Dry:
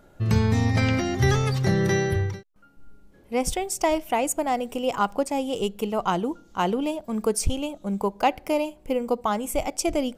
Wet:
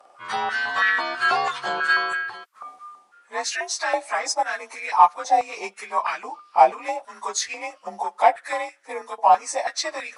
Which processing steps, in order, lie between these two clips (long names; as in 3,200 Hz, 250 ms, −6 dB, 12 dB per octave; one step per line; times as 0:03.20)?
partials spread apart or drawn together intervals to 91%
harmonic generator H 5 −29 dB, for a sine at −9.5 dBFS
reversed playback
upward compression, threshold −33 dBFS
reversed playback
high-pass on a step sequencer 6.1 Hz 770–1,600 Hz
level +3 dB